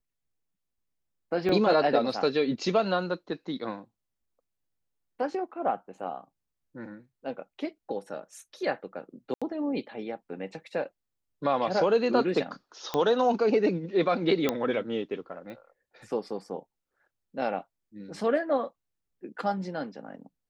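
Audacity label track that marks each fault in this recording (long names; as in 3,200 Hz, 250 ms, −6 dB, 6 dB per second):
1.490000	1.490000	drop-out 2.1 ms
9.340000	9.420000	drop-out 76 ms
12.940000	12.940000	click −15 dBFS
14.490000	14.490000	click −11 dBFS
15.500000	15.500000	click −31 dBFS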